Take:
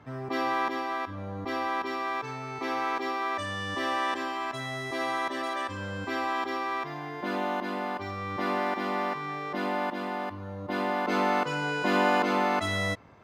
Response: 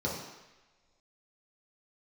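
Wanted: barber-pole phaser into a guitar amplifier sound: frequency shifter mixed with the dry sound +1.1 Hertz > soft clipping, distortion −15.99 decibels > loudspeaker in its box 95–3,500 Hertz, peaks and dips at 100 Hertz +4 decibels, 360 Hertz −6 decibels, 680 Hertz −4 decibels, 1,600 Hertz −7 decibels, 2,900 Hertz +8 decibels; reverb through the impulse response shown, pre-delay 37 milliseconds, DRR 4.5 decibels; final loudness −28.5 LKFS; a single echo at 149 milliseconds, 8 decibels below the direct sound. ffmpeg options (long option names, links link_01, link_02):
-filter_complex "[0:a]aecho=1:1:149:0.398,asplit=2[link_01][link_02];[1:a]atrim=start_sample=2205,adelay=37[link_03];[link_02][link_03]afir=irnorm=-1:irlink=0,volume=-11.5dB[link_04];[link_01][link_04]amix=inputs=2:normalize=0,asplit=2[link_05][link_06];[link_06]afreqshift=1.1[link_07];[link_05][link_07]amix=inputs=2:normalize=1,asoftclip=threshold=-21.5dB,highpass=95,equalizer=frequency=100:width_type=q:width=4:gain=4,equalizer=frequency=360:width_type=q:width=4:gain=-6,equalizer=frequency=680:width_type=q:width=4:gain=-4,equalizer=frequency=1600:width_type=q:width=4:gain=-7,equalizer=frequency=2900:width_type=q:width=4:gain=8,lowpass=frequency=3500:width=0.5412,lowpass=frequency=3500:width=1.3066,volume=4.5dB"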